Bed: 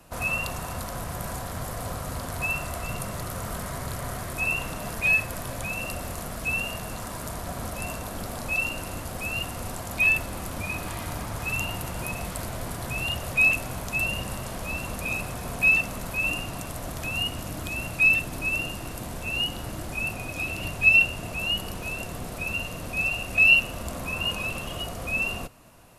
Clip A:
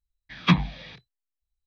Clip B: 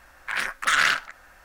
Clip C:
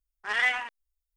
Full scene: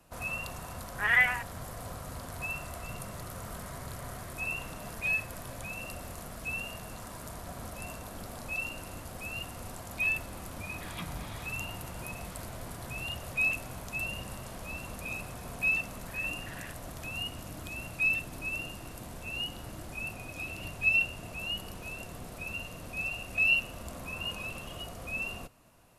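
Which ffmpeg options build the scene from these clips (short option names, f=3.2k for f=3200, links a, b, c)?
-filter_complex "[0:a]volume=-8.5dB[a];[3:a]lowpass=f=2.1k:t=q:w=1.5[b];[1:a]acompressor=threshold=-33dB:ratio=6:attack=3.2:release=140:knee=1:detection=peak[c];[2:a]asplit=3[d][e][f];[d]bandpass=f=530:t=q:w=8,volume=0dB[g];[e]bandpass=f=1.84k:t=q:w=8,volume=-6dB[h];[f]bandpass=f=2.48k:t=q:w=8,volume=-9dB[i];[g][h][i]amix=inputs=3:normalize=0[j];[b]atrim=end=1.16,asetpts=PTS-STARTPTS,volume=-2dB,afade=t=in:d=0.004:c=hsin,afade=t=out:st=1.156:d=0.004:c=hsin,adelay=740[k];[c]atrim=end=1.66,asetpts=PTS-STARTPTS,volume=-6dB,afade=t=in:d=0.004:c=hsin,afade=t=out:st=1.656:d=0.004:c=hsin,adelay=10510[l];[j]atrim=end=1.44,asetpts=PTS-STARTPTS,volume=-14.5dB,afade=t=in:d=0.004:c=hsin,afade=t=out:st=1.436:d=0.004:c=hsin,adelay=15790[m];[a][k][l][m]amix=inputs=4:normalize=0"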